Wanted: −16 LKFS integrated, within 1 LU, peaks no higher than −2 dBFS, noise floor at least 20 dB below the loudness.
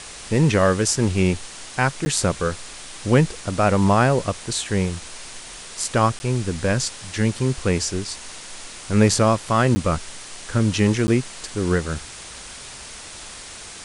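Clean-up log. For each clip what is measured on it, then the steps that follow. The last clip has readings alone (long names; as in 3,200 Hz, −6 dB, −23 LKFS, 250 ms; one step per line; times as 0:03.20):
number of dropouts 4; longest dropout 10 ms; background noise floor −38 dBFS; target noise floor −41 dBFS; integrated loudness −21.0 LKFS; sample peak −3.5 dBFS; target loudness −16.0 LKFS
→ repair the gap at 0:02.05/0:06.19/0:09.75/0:11.07, 10 ms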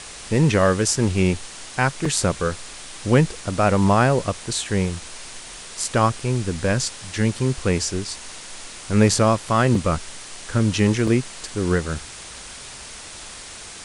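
number of dropouts 0; background noise floor −38 dBFS; target noise floor −41 dBFS
→ broadband denoise 6 dB, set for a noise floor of −38 dBFS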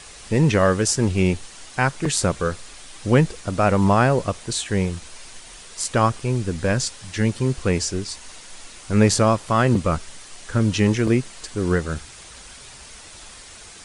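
background noise floor −43 dBFS; integrated loudness −21.0 LKFS; sample peak −3.5 dBFS; target loudness −16.0 LKFS
→ level +5 dB
brickwall limiter −2 dBFS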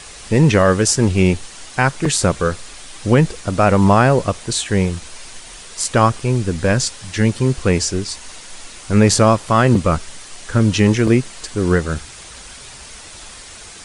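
integrated loudness −16.5 LKFS; sample peak −2.0 dBFS; background noise floor −38 dBFS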